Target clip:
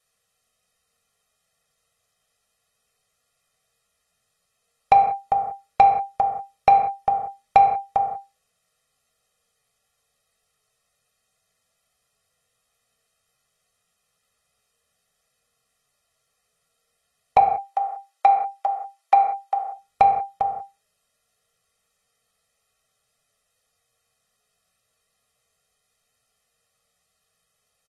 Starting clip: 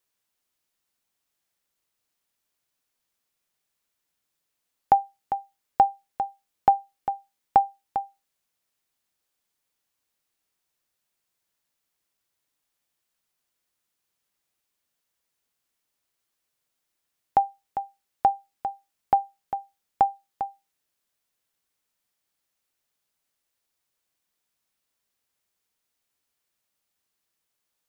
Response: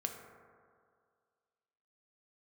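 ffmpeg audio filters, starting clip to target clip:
-filter_complex "[0:a]asettb=1/sr,asplit=3[link_01][link_02][link_03];[link_01]atrim=end=17.384[link_04];[link_02]atrim=start=17.38:end=19.59,asetpts=PTS-STARTPTS,afade=type=in:duration=0.004:curve=qsin,afade=type=out:start_time=2.206:duration=0.004:curve=qsin,highpass=frequency=600:width=0.5412,highpass=frequency=600:width=1.3066[link_05];[link_03]atrim=start=19.586[link_06];[link_04][link_05]acrossfade=duration=0.004:curve1=hsin:curve2=qsin[link_07];[link_07][link_06]acrossfade=duration=0.004:curve1=qsin:curve2=hsin,aecho=1:1:1.6:0.96,asoftclip=type=tanh:threshold=-11dB[link_08];[1:a]atrim=start_sample=2205,afade=type=out:start_time=0.24:duration=0.01,atrim=end_sample=11025[link_09];[link_08][link_09]afir=irnorm=-1:irlink=0,volume=6dB" -ar 32000 -c:a aac -b:a 32k

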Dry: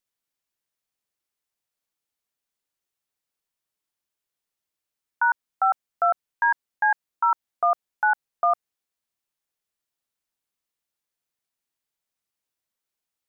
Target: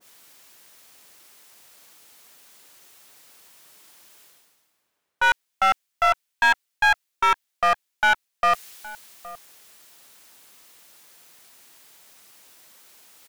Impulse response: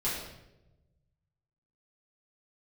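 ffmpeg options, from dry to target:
-filter_complex "[0:a]highpass=frequency=220:poles=1,areverse,acompressor=mode=upward:threshold=-28dB:ratio=2.5,areverse,aeval=exprs='clip(val(0),-1,0.0841)':channel_layout=same,asplit=2[link_01][link_02];[link_02]adelay=816.3,volume=-17dB,highshelf=frequency=4000:gain=-18.4[link_03];[link_01][link_03]amix=inputs=2:normalize=0,adynamicequalizer=threshold=0.0141:dfrequency=1500:dqfactor=0.7:tfrequency=1500:tqfactor=0.7:attack=5:release=100:ratio=0.375:range=4:mode=boostabove:tftype=highshelf,volume=1.5dB"

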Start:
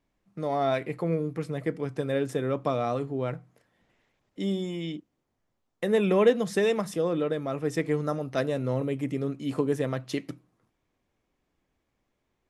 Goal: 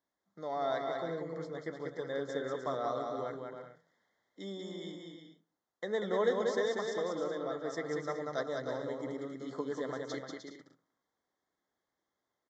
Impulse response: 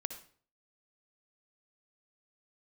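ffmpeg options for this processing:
-filter_complex "[0:a]highpass=frequency=780:poles=1,aecho=1:1:190|304|372.4|413.4|438.1:0.631|0.398|0.251|0.158|0.1,asplit=2[link_01][link_02];[1:a]atrim=start_sample=2205,lowpass=2000[link_03];[link_02][link_03]afir=irnorm=-1:irlink=0,volume=-11dB[link_04];[link_01][link_04]amix=inputs=2:normalize=0,aresample=16000,aresample=44100,asuperstop=centerf=2600:order=12:qfactor=2.6,volume=-6dB"

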